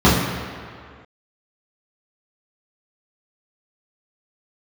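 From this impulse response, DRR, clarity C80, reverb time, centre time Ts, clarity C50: -10.0 dB, 3.5 dB, 2.1 s, 87 ms, 1.5 dB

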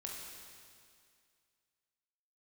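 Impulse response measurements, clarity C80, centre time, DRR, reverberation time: 2.0 dB, 105 ms, -2.0 dB, 2.2 s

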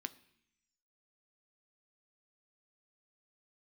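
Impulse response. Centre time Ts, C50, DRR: 4 ms, 19.0 dB, 11.0 dB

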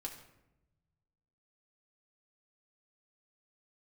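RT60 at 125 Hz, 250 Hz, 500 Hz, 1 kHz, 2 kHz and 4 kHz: 2.1 s, 1.4 s, 1.0 s, 0.80 s, 0.75 s, 0.55 s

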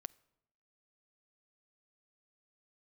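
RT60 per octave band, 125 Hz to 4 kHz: 0.95 s, 0.90 s, 0.90 s, 0.80 s, 0.70 s, 0.60 s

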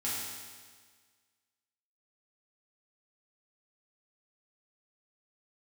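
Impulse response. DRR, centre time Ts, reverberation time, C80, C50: -8.5 dB, 103 ms, 1.6 s, 1.0 dB, -1.5 dB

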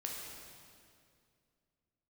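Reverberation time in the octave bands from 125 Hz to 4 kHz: 2.9 s, 2.7 s, 2.5 s, 2.2 s, 2.0 s, 2.0 s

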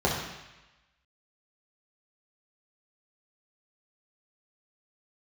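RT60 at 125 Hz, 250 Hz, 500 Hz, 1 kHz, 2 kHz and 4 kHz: 1.0 s, 0.95 s, 0.95 s, 1.1 s, 1.2 s, 1.1 s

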